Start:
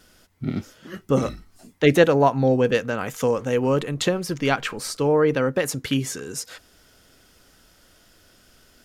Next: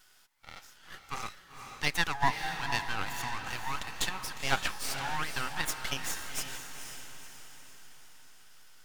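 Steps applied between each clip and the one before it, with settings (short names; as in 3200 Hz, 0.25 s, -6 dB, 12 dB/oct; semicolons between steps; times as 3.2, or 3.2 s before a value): elliptic high-pass 790 Hz, stop band 40 dB; half-wave rectifier; diffused feedback echo 0.493 s, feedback 49%, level -7 dB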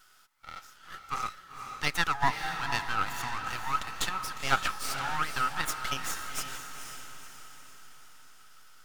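bell 1300 Hz +12.5 dB 0.21 oct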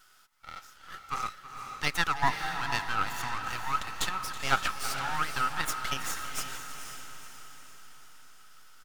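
echo 0.324 s -15.5 dB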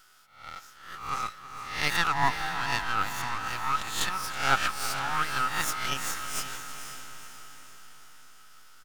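spectral swells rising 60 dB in 0.54 s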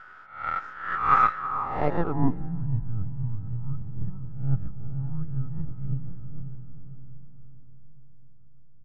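in parallel at -12 dB: sample-rate reducer 4700 Hz; on the sum: low-pass sweep 1600 Hz -> 130 Hz, 1.37–2.69; gain +6.5 dB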